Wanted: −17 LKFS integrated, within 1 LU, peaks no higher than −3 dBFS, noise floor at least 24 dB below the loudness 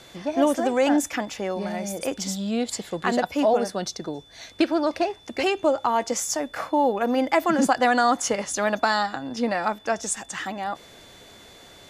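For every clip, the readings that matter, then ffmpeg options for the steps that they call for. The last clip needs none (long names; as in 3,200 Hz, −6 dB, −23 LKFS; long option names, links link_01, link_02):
interfering tone 3,500 Hz; level of the tone −51 dBFS; integrated loudness −24.5 LKFS; sample peak −7.0 dBFS; target loudness −17.0 LKFS
→ -af "bandreject=frequency=3500:width=30"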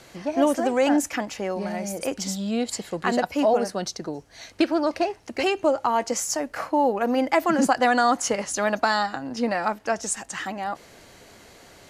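interfering tone none found; integrated loudness −24.5 LKFS; sample peak −7.0 dBFS; target loudness −17.0 LKFS
→ -af "volume=7.5dB,alimiter=limit=-3dB:level=0:latency=1"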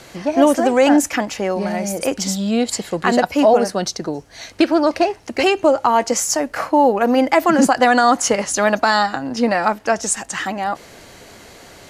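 integrated loudness −17.0 LKFS; sample peak −3.0 dBFS; background noise floor −43 dBFS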